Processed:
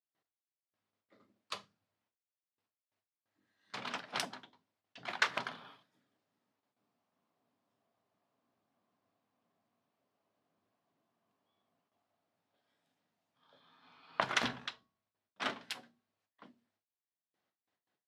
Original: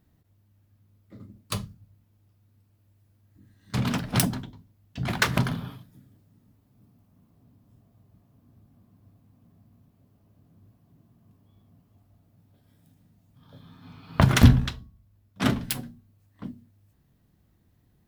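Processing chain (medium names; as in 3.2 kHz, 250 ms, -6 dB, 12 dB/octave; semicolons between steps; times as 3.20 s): gate with hold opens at -54 dBFS; band-pass 630–4900 Hz; trim -6.5 dB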